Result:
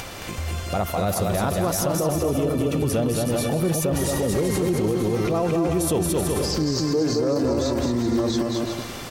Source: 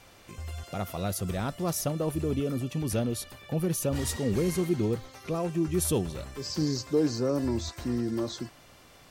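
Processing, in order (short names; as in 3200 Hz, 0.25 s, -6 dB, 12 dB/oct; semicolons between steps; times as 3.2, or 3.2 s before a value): upward compressor, threshold -34 dBFS; on a send: bouncing-ball echo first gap 0.22 s, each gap 0.7×, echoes 5; on the sum: dynamic EQ 720 Hz, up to +6 dB, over -42 dBFS, Q 0.78; limiter -23 dBFS, peak gain reduction 11.5 dB; gain +8.5 dB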